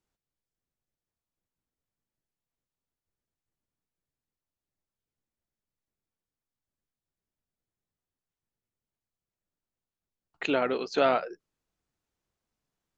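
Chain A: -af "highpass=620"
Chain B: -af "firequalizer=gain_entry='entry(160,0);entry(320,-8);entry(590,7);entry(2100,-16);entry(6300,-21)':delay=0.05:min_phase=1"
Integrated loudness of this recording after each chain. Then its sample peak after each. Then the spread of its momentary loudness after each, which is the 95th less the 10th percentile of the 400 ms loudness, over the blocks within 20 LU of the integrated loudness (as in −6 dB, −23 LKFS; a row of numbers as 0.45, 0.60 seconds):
−30.5, −24.5 LKFS; −13.0, −10.5 dBFS; 9, 17 LU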